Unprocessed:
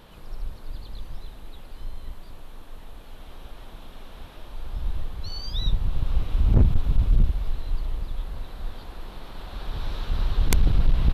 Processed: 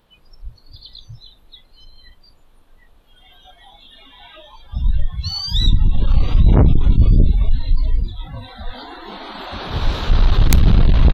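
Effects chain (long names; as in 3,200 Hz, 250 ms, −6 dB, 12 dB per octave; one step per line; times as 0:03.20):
harmonic generator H 5 −8 dB, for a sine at −7.5 dBFS
repeating echo 838 ms, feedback 56%, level −23.5 dB
noise reduction from a noise print of the clip's start 24 dB
level +4.5 dB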